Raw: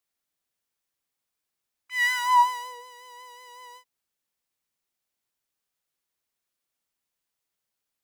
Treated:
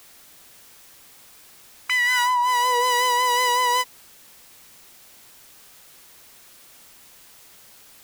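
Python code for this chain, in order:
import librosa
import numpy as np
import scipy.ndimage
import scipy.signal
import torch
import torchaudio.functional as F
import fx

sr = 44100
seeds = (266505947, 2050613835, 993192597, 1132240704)

y = fx.env_flatten(x, sr, amount_pct=100)
y = F.gain(torch.from_numpy(y), -5.0).numpy()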